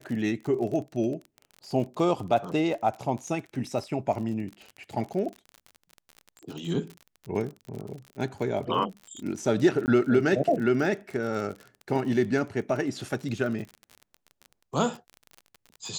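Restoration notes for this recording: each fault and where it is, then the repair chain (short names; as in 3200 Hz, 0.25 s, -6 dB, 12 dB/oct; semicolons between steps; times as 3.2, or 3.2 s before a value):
crackle 39/s -34 dBFS
9.86–9.88 gap 19 ms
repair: de-click; interpolate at 9.86, 19 ms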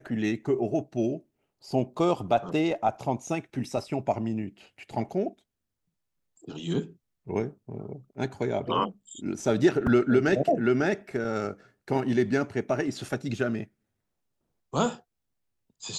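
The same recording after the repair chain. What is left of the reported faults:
none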